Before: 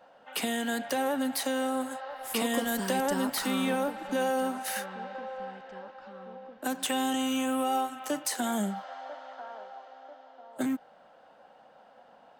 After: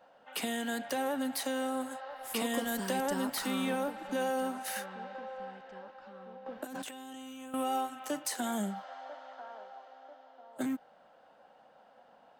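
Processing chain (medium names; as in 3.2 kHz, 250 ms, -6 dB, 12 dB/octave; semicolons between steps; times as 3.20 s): 6.46–7.54 s: compressor with a negative ratio -40 dBFS, ratio -1; trim -4 dB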